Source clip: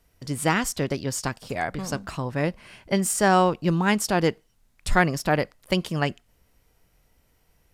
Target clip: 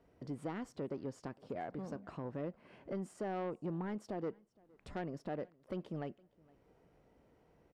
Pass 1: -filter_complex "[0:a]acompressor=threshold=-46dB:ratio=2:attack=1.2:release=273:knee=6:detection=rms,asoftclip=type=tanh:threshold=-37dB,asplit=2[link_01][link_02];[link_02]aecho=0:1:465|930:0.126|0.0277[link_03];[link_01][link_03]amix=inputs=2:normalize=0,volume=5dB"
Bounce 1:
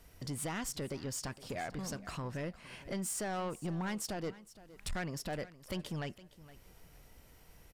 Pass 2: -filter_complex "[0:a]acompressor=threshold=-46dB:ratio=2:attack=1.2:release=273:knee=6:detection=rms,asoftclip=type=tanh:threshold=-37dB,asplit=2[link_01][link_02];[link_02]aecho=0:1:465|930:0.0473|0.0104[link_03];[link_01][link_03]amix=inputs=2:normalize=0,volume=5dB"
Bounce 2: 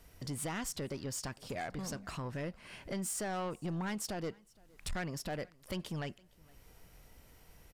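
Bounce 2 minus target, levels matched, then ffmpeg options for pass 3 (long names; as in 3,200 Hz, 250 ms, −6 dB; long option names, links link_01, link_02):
500 Hz band −3.5 dB
-filter_complex "[0:a]acompressor=threshold=-46dB:ratio=2:attack=1.2:release=273:knee=6:detection=rms,bandpass=frequency=380:width_type=q:width=0.81:csg=0,asoftclip=type=tanh:threshold=-37dB,asplit=2[link_01][link_02];[link_02]aecho=0:1:465|930:0.0473|0.0104[link_03];[link_01][link_03]amix=inputs=2:normalize=0,volume=5dB"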